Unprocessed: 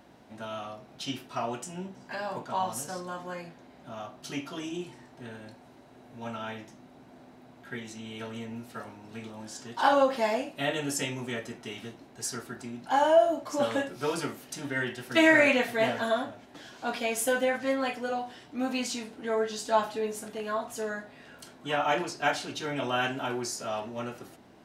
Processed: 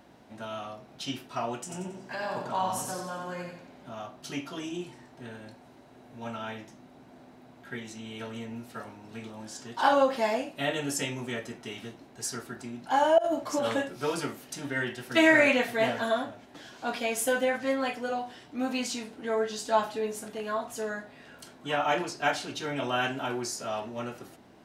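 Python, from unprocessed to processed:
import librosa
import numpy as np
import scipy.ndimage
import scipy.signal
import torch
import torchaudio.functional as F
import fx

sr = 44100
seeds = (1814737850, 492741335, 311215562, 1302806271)

y = fx.echo_feedback(x, sr, ms=91, feedback_pct=37, wet_db=-4.5, at=(1.69, 3.89), fade=0.02)
y = fx.over_compress(y, sr, threshold_db=-28.0, ratio=-1.0, at=(13.18, 13.74))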